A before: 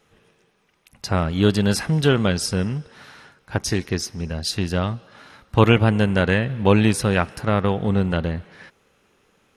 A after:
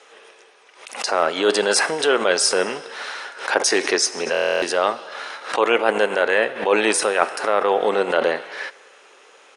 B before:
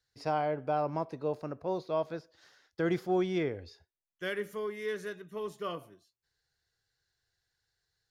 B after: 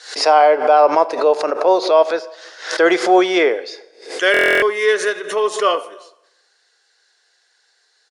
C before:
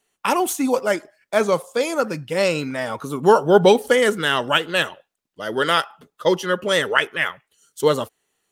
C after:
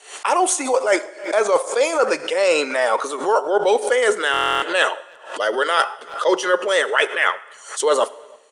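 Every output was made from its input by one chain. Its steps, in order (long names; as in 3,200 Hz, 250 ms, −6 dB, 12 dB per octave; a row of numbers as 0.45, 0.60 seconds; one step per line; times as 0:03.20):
dynamic equaliser 3,700 Hz, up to −5 dB, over −37 dBFS, Q 0.78
high-pass filter 430 Hz 24 dB per octave
reversed playback
downward compressor 10 to 1, threshold −28 dBFS
reversed playback
Butterworth low-pass 10,000 Hz 72 dB per octave
far-end echo of a speakerphone 320 ms, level −29 dB
dense smooth reverb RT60 1 s, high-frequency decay 0.9×, pre-delay 0 ms, DRR 16.5 dB
buffer that repeats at 0:04.32, samples 1,024, times 12
background raised ahead of every attack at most 120 dB per second
normalise the peak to −1.5 dBFS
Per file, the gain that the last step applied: +14.0, +22.0, +13.5 decibels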